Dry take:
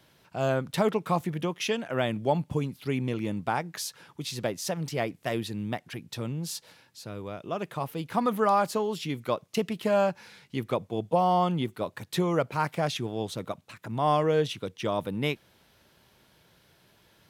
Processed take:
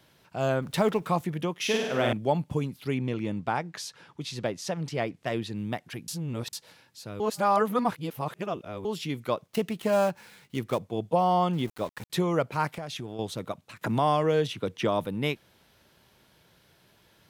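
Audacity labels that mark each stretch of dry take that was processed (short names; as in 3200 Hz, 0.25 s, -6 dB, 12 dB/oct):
0.620000	1.070000	G.711 law mismatch coded by mu
1.580000	2.130000	flutter echo walls apart 8.6 m, dies away in 0.96 s
2.940000	5.560000	air absorption 51 m
6.080000	6.530000	reverse
7.200000	8.850000	reverse
9.460000	10.870000	switching dead time of 0.071 ms
11.530000	12.100000	sample gate under -42 dBFS
12.730000	13.190000	compressor, threshold -32 dBFS
13.810000	15.050000	three-band squash depth 70%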